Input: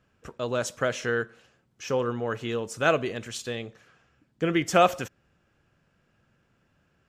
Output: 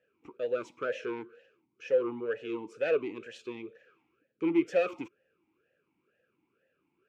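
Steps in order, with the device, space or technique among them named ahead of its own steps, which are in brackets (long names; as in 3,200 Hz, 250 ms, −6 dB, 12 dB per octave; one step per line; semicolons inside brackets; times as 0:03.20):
talk box (tube saturation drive 21 dB, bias 0.3; formant filter swept between two vowels e-u 2.1 Hz)
level +7 dB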